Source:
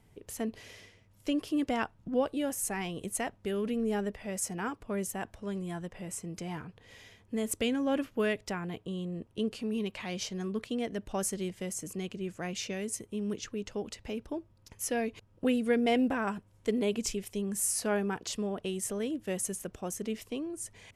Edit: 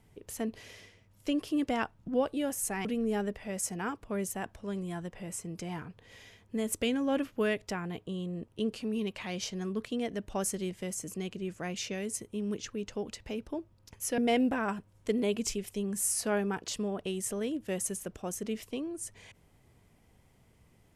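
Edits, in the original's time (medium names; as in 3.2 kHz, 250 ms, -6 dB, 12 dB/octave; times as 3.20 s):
2.85–3.64 s: delete
14.97–15.77 s: delete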